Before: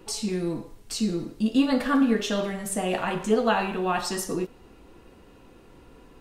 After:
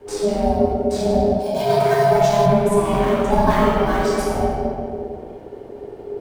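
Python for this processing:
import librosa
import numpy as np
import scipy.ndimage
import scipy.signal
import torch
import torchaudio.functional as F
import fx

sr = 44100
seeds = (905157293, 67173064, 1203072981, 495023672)

p1 = fx.sample_hold(x, sr, seeds[0], rate_hz=4800.0, jitter_pct=0)
p2 = x + (p1 * librosa.db_to_amplitude(-8.0))
p3 = fx.low_shelf(p2, sr, hz=180.0, db=11.0)
p4 = fx.room_shoebox(p3, sr, seeds[1], volume_m3=3000.0, walls='mixed', distance_m=6.2)
p5 = p4 * np.sin(2.0 * np.pi * 410.0 * np.arange(len(p4)) / sr)
p6 = fx.bass_treble(p5, sr, bass_db=-11, treble_db=6, at=(1.39, 2.46))
y = p6 * librosa.db_to_amplitude(-4.5)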